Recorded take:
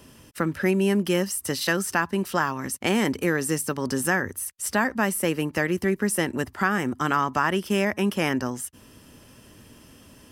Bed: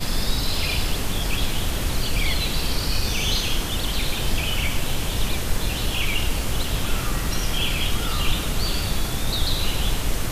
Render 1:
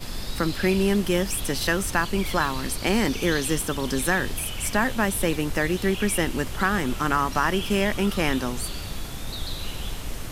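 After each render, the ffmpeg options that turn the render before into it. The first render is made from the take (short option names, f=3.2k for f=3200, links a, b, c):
-filter_complex "[1:a]volume=-9dB[a];[0:a][a]amix=inputs=2:normalize=0"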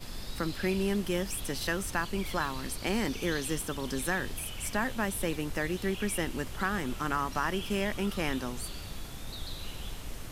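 -af "volume=-8dB"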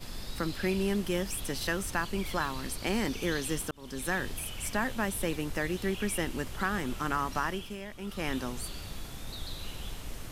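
-filter_complex "[0:a]asplit=4[a][b][c][d];[a]atrim=end=3.71,asetpts=PTS-STARTPTS,afade=t=out:st=3.706:d=0.004:c=hsin[e];[b]atrim=start=3.71:end=7.77,asetpts=PTS-STARTPTS,afade=t=in:d=0.43,afade=t=out:st=3.68:d=0.38:silence=0.281838[f];[c]atrim=start=7.77:end=7.98,asetpts=PTS-STARTPTS,volume=-11dB[g];[d]atrim=start=7.98,asetpts=PTS-STARTPTS,afade=t=in:d=0.38:silence=0.281838[h];[e][f][g][h]concat=n=4:v=0:a=1"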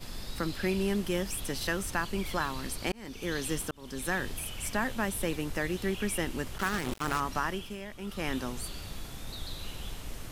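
-filter_complex "[0:a]asettb=1/sr,asplit=3[a][b][c];[a]atrim=end=6.584[d];[b]atrim=start=6.58:end=7.2,asetpts=PTS-STARTPTS,afade=t=in:d=0.004:c=qsin,afade=t=out:st=0.616:d=0.004:c=qsin,acrusher=bits=4:mix=0:aa=0.5[e];[c]atrim=start=7.196[f];[d][e]acrossfade=d=0.004:c1=hsin:c2=qsin[g];[g][f]acrossfade=d=0.004:c1=qsin:c2=hsin,asplit=2[h][i];[h]atrim=end=2.92,asetpts=PTS-STARTPTS,afade=t=out:st=2.916:d=0.004:c=hsin[j];[i]atrim=start=2.92,asetpts=PTS-STARTPTS,afade=t=in:d=0.51[k];[j][k]concat=n=2:v=0:a=1"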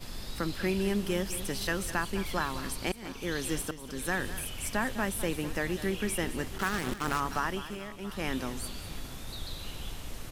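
-af "aecho=1:1:203|680:0.211|0.112"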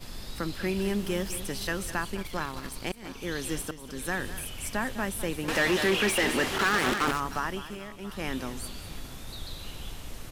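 -filter_complex "[0:a]asettb=1/sr,asplit=3[a][b][c];[a]atrim=end=0.764[d];[b]atrim=start=0.76:end=1.38,asetpts=PTS-STARTPTS,afade=t=in:d=0.004:c=qsin,afade=t=out:st=0.616:d=0.004:c=qsin,aeval=exprs='val(0)+0.5*0.00631*sgn(val(0))':c=same[e];[c]atrim=start=1.376[f];[d][e]acrossfade=d=0.004:c1=hsin:c2=qsin[g];[g][f]acrossfade=d=0.004:c1=qsin:c2=hsin,asettb=1/sr,asplit=3[h][i][j];[h]atrim=end=2.154[k];[i]atrim=start=2.15:end=3.04,asetpts=PTS-STARTPTS,afade=t=in:d=0.004:c=qsin,afade=t=out:st=0.886:d=0.004:c=qsin,aeval=exprs='if(lt(val(0),0),0.447*val(0),val(0))':c=same[l];[j]atrim=start=3.036[m];[k][l]acrossfade=d=0.004:c1=hsin:c2=qsin[n];[n][m]acrossfade=d=0.004:c1=qsin:c2=hsin,asettb=1/sr,asplit=3[o][p][q];[o]atrim=end=5.484[r];[p]atrim=start=5.48:end=7.11,asetpts=PTS-STARTPTS,afade=t=in:d=0.004:c=qsin,afade=t=out:st=1.626:d=0.004:c=qsin,asplit=2[s][t];[t]highpass=f=720:p=1,volume=25dB,asoftclip=type=tanh:threshold=-15dB[u];[s][u]amix=inputs=2:normalize=0,lowpass=f=3.4k:p=1,volume=-6dB[v];[q]atrim=start=7.106[w];[r][v]acrossfade=d=0.004:c1=hsin:c2=qsin[x];[x][w]acrossfade=d=0.004:c1=qsin:c2=hsin"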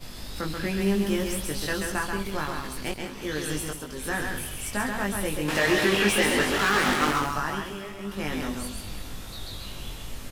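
-filter_complex "[0:a]asplit=2[a][b];[b]adelay=20,volume=-3dB[c];[a][c]amix=inputs=2:normalize=0,asplit=2[d][e];[e]aecho=0:1:134:0.596[f];[d][f]amix=inputs=2:normalize=0"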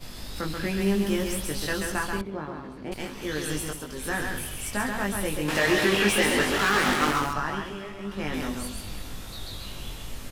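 -filter_complex "[0:a]asettb=1/sr,asplit=3[a][b][c];[a]atrim=end=2.214[d];[b]atrim=start=2.21:end=2.92,asetpts=PTS-STARTPTS,afade=t=in:d=0.004:c=qsin,afade=t=out:st=0.706:d=0.004:c=qsin,bandpass=f=300:t=q:w=0.57[e];[c]atrim=start=2.916[f];[d][e]acrossfade=d=0.004:c1=hsin:c2=qsin[g];[g][f]acrossfade=d=0.004:c1=qsin:c2=hsin,asettb=1/sr,asplit=3[h][i][j];[h]atrim=end=7.334[k];[i]atrim=start=7.33:end=8.34,asetpts=PTS-STARTPTS,afade=t=in:d=0.004:c=qsin,afade=t=out:st=1.006:d=0.004:c=qsin,highshelf=f=7.7k:g=-12[l];[j]atrim=start=8.336[m];[k][l]acrossfade=d=0.004:c1=hsin:c2=qsin[n];[n][m]acrossfade=d=0.004:c1=qsin:c2=hsin"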